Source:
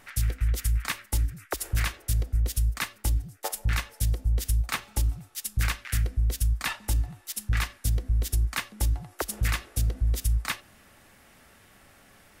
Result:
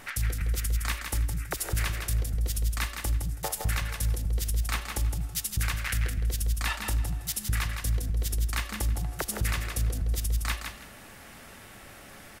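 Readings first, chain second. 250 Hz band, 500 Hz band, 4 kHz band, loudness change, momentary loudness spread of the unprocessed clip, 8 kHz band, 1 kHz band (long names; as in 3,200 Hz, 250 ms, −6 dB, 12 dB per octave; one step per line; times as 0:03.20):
+1.0 dB, 0.0 dB, 0.0 dB, −1.0 dB, 4 LU, +0.5 dB, 0.0 dB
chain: downward compressor, threshold −30 dBFS, peak gain reduction 9.5 dB
brickwall limiter −26 dBFS, peak gain reduction 7.5 dB
repeating echo 163 ms, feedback 21%, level −6 dB
level +7 dB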